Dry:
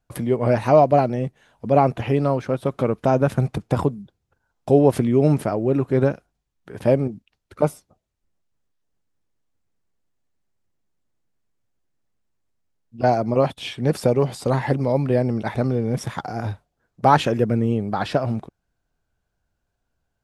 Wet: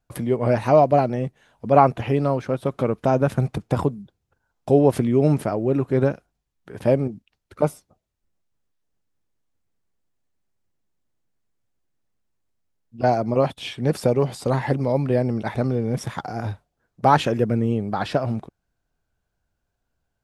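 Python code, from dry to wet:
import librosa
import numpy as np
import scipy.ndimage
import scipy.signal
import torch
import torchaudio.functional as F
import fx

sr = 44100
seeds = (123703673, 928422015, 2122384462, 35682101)

y = fx.dynamic_eq(x, sr, hz=1200.0, q=1.1, threshold_db=-32.0, ratio=4.0, max_db=8, at=(1.11, 1.86), fade=0.02)
y = y * 10.0 ** (-1.0 / 20.0)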